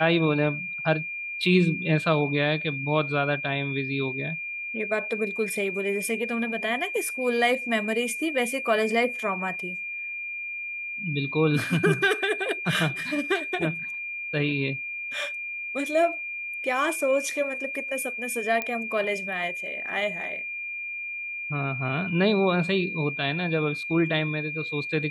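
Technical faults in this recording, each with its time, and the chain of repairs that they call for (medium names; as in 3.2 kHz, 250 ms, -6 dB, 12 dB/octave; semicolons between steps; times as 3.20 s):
whine 2.4 kHz -31 dBFS
18.62 s: pop -14 dBFS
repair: de-click; band-stop 2.4 kHz, Q 30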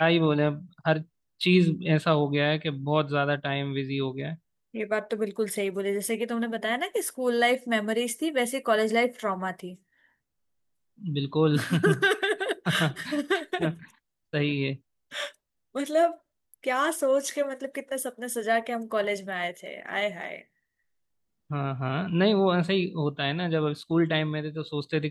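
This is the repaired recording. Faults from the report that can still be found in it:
nothing left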